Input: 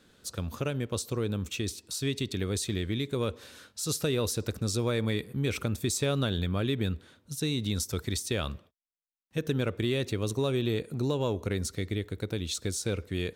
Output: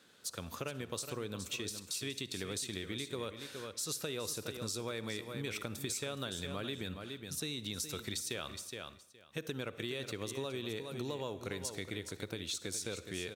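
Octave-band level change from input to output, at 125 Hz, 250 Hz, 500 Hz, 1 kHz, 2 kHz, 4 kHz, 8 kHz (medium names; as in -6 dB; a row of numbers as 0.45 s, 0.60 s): -14.5 dB, -11.0 dB, -9.5 dB, -6.0 dB, -5.0 dB, -4.5 dB, -4.5 dB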